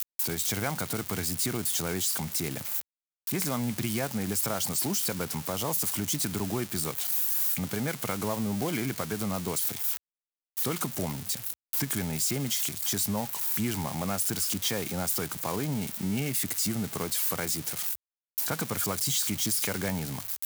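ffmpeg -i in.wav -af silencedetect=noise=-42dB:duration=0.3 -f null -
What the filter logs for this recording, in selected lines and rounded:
silence_start: 2.81
silence_end: 3.27 | silence_duration: 0.46
silence_start: 9.97
silence_end: 10.57 | silence_duration: 0.60
silence_start: 17.95
silence_end: 18.38 | silence_duration: 0.43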